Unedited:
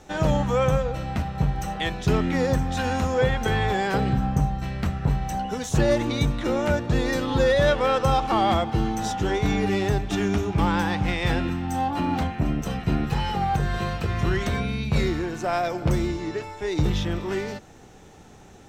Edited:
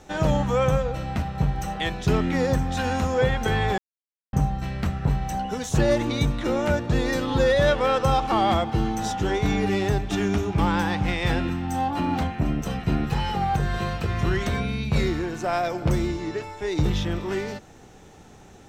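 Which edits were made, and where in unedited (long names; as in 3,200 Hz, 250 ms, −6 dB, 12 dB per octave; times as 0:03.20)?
0:03.78–0:04.33: silence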